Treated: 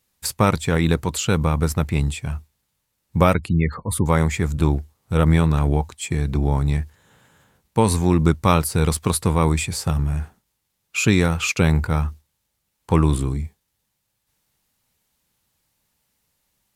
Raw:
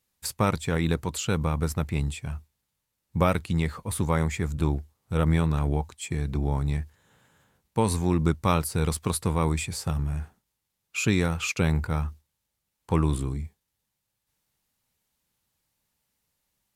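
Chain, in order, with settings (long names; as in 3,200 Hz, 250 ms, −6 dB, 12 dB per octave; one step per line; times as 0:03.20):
0:03.34–0:04.06: gate on every frequency bin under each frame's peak −25 dB strong
level +6.5 dB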